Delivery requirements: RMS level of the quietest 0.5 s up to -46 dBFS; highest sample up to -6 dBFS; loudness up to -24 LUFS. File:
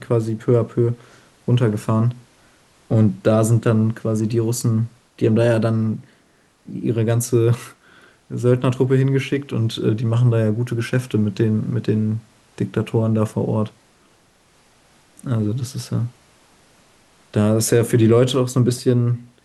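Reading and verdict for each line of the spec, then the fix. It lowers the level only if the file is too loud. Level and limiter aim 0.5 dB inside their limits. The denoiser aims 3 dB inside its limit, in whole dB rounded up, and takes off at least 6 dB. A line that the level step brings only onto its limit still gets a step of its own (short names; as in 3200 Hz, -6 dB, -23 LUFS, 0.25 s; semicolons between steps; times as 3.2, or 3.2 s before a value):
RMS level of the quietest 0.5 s -57 dBFS: OK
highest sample -4.5 dBFS: fail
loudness -19.5 LUFS: fail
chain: gain -5 dB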